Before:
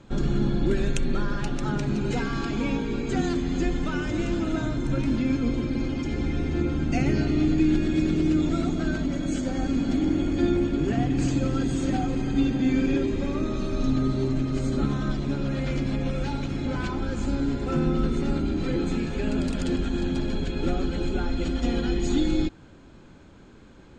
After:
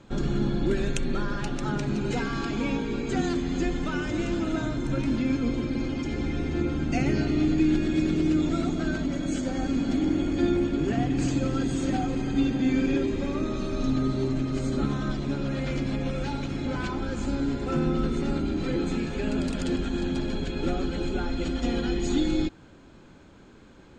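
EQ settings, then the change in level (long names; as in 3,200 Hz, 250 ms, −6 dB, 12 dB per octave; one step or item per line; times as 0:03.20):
low-shelf EQ 160 Hz −4 dB
0.0 dB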